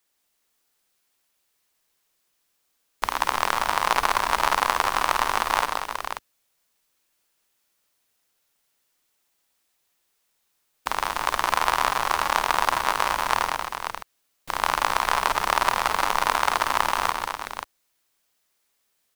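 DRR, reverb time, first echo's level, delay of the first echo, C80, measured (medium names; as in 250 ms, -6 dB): no reverb, no reverb, -8.0 dB, 52 ms, no reverb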